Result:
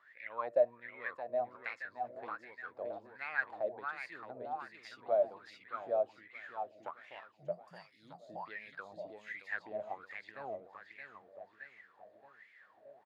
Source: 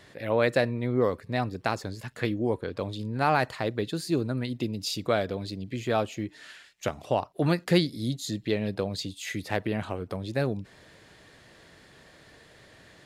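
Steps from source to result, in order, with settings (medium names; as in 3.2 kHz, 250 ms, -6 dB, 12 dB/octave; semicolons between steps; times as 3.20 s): time-frequency box 7.32–7.91 s, 220–4500 Hz -28 dB; feedback delay 622 ms, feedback 51%, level -5.5 dB; wah-wah 1.3 Hz 600–2200 Hz, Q 12; trim +3.5 dB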